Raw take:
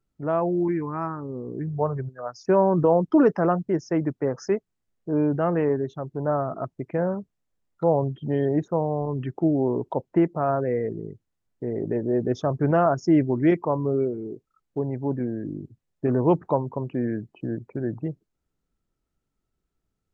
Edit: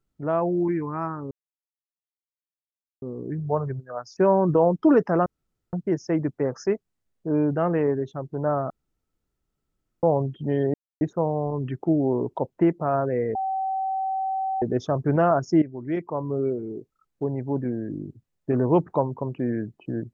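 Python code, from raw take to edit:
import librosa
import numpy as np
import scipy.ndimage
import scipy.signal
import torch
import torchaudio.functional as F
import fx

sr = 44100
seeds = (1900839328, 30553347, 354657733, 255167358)

y = fx.edit(x, sr, fx.insert_silence(at_s=1.31, length_s=1.71),
    fx.insert_room_tone(at_s=3.55, length_s=0.47),
    fx.room_tone_fill(start_s=6.52, length_s=1.33),
    fx.insert_silence(at_s=8.56, length_s=0.27),
    fx.bleep(start_s=10.9, length_s=1.27, hz=767.0, db=-23.5),
    fx.fade_in_from(start_s=13.17, length_s=1.02, floor_db=-17.0), tone=tone)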